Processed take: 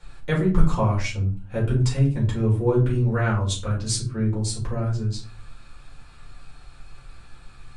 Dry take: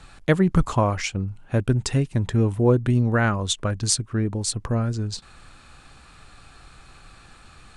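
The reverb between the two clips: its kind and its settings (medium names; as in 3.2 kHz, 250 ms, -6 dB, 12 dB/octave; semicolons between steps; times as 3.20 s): simulated room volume 170 m³, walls furnished, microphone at 4.6 m; trim -12 dB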